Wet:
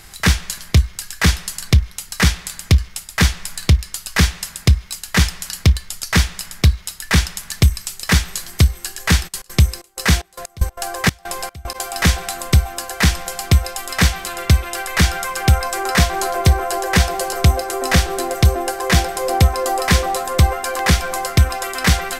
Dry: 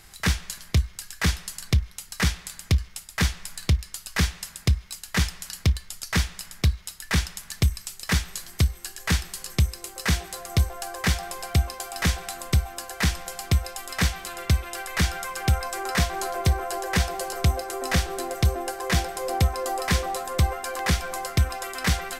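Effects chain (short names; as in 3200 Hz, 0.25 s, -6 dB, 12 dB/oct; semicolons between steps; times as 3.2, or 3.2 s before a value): 9.27–11.74 step gate "..x..x.xxxx..xxx" 188 bpm -24 dB; gain +8.5 dB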